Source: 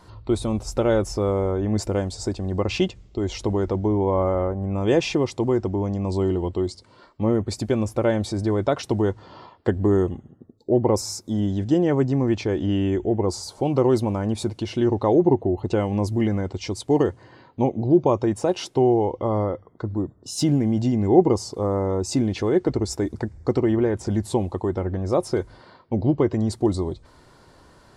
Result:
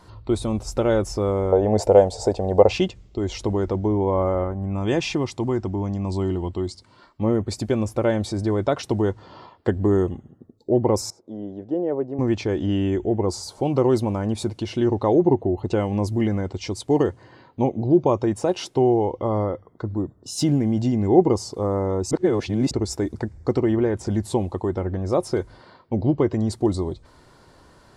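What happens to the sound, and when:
0:01.52–0:02.73: flat-topped bell 620 Hz +14 dB 1.3 octaves
0:04.44–0:07.21: parametric band 480 Hz −6.5 dB 0.69 octaves
0:11.10–0:12.19: resonant band-pass 520 Hz, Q 1.7
0:22.11–0:22.71: reverse

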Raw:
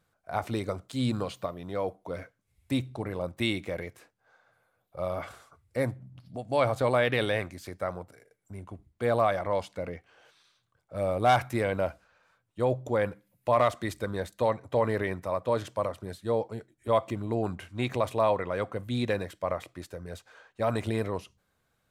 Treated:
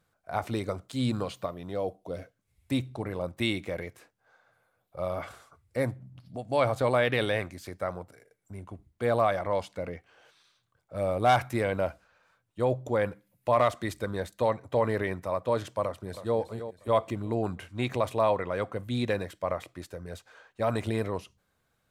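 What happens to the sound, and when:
0:01.75–0:02.36: gain on a spectral selection 810–2,500 Hz −7 dB
0:15.82–0:16.38: delay throw 320 ms, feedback 40%, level −11 dB

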